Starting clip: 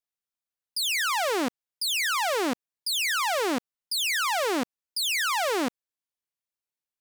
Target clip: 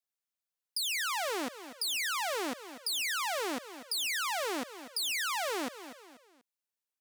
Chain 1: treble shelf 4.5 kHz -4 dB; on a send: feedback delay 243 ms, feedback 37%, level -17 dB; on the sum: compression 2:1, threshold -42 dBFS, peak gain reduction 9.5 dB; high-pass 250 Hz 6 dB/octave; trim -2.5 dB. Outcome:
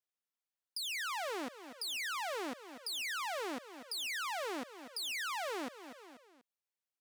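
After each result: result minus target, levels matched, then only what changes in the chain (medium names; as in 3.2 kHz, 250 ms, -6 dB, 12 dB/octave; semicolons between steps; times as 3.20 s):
compression: peak gain reduction +4.5 dB; 8 kHz band -2.5 dB
change: compression 2:1, threshold -32 dBFS, peak gain reduction 4.5 dB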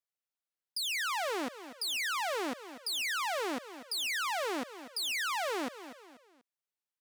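8 kHz band -2.5 dB
change: treble shelf 4.5 kHz +2.5 dB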